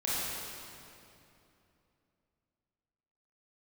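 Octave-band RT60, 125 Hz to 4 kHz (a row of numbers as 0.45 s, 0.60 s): 3.4 s, 3.4 s, 3.0 s, 2.7 s, 2.4 s, 2.2 s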